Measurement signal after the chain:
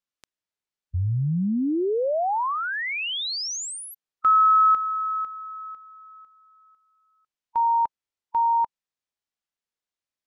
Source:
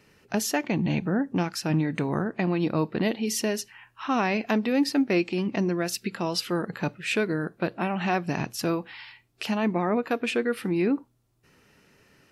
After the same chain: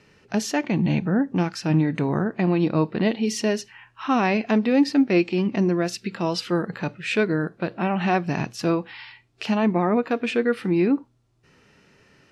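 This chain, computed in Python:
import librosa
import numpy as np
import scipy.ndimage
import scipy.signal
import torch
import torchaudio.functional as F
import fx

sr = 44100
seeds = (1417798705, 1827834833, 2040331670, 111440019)

y = scipy.signal.sosfilt(scipy.signal.butter(2, 6900.0, 'lowpass', fs=sr, output='sos'), x)
y = fx.hpss(y, sr, part='harmonic', gain_db=5)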